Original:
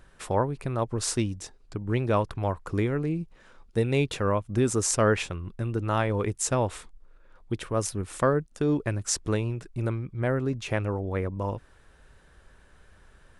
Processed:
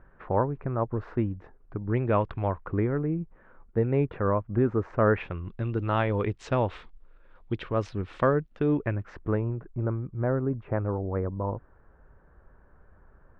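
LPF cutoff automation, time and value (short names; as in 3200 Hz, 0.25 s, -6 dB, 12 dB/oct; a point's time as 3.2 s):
LPF 24 dB/oct
1.8 s 1700 Hz
2.31 s 3100 Hz
2.88 s 1700 Hz
5.06 s 1700 Hz
5.51 s 3600 Hz
8.39 s 3600 Hz
9.58 s 1400 Hz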